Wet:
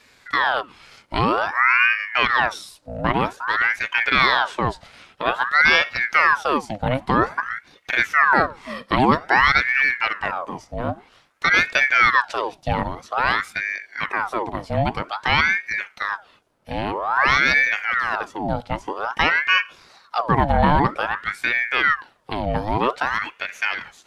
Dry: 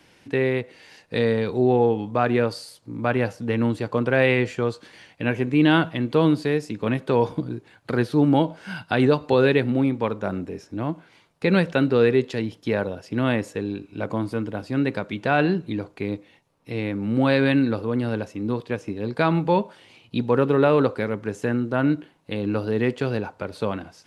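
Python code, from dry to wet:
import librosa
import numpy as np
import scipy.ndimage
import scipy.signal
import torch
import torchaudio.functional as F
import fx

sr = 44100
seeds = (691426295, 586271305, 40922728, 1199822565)

y = fx.ring_lfo(x, sr, carrier_hz=1200.0, swing_pct=70, hz=0.51)
y = y * librosa.db_to_amplitude(4.5)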